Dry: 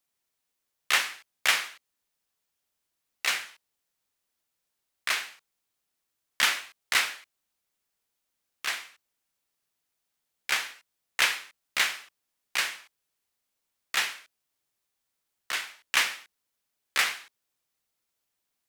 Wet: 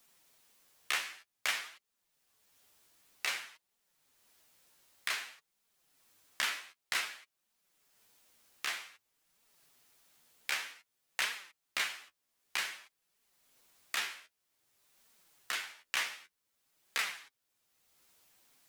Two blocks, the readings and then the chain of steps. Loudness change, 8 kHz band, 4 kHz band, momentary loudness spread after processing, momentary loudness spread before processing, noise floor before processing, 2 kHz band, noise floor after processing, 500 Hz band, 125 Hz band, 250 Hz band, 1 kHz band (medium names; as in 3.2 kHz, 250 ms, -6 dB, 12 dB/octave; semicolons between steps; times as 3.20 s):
-9.0 dB, -8.5 dB, -9.0 dB, 14 LU, 16 LU, -82 dBFS, -8.5 dB, -84 dBFS, -8.0 dB, no reading, -8.5 dB, -8.5 dB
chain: flange 0.53 Hz, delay 4.2 ms, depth 9.8 ms, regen +27%; three bands compressed up and down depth 70%; trim -3 dB